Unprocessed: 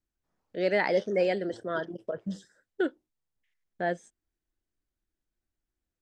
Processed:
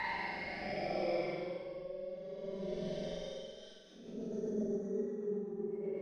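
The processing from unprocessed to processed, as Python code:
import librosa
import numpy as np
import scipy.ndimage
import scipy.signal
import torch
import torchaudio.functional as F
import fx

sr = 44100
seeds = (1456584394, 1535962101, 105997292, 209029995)

y = fx.diode_clip(x, sr, knee_db=-21.5)
y = fx.doppler_pass(y, sr, speed_mps=7, closest_m=6.8, pass_at_s=2.69)
y = fx.peak_eq(y, sr, hz=7100.0, db=-9.5, octaves=0.25)
y = y + 0.85 * np.pad(y, (int(5.2 * sr / 1000.0), 0))[:len(y)]
y = fx.over_compress(y, sr, threshold_db=-35.0, ratio=-1.0)
y = fx.paulstretch(y, sr, seeds[0], factor=20.0, window_s=0.05, from_s=0.84)
y = fx.rotary_switch(y, sr, hz=0.6, then_hz=8.0, switch_at_s=3.3)
y = fx.room_flutter(y, sr, wall_m=7.9, rt60_s=0.89)
y = F.gain(torch.from_numpy(y), -5.0).numpy()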